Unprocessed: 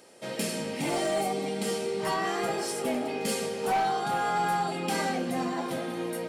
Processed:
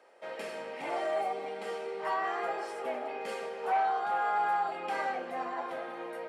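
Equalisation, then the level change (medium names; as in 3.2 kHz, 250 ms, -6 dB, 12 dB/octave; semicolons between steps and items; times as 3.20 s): three-band isolator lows -20 dB, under 450 Hz, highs -14 dB, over 2.3 kHz; peaking EQ 110 Hz -4.5 dB 2.9 oct; treble shelf 6.6 kHz -11 dB; 0.0 dB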